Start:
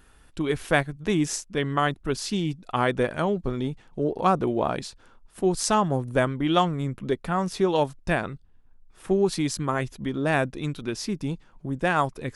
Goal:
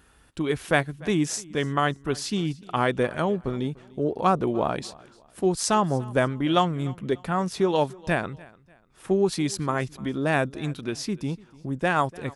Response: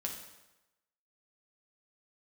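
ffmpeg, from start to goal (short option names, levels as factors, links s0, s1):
-filter_complex "[0:a]highpass=49,asplit=2[s0][s1];[s1]aecho=0:1:295|590:0.075|0.0255[s2];[s0][s2]amix=inputs=2:normalize=0"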